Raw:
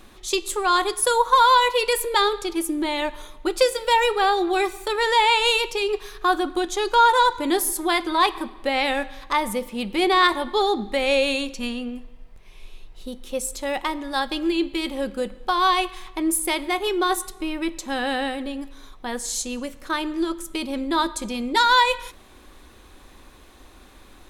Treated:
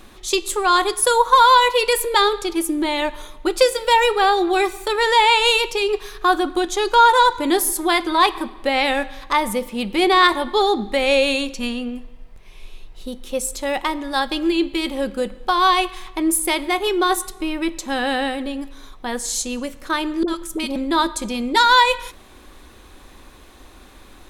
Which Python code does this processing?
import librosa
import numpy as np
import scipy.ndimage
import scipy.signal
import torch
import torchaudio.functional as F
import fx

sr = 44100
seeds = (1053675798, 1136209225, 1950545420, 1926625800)

y = fx.dispersion(x, sr, late='highs', ms=50.0, hz=710.0, at=(20.23, 20.76))
y = y * librosa.db_to_amplitude(3.5)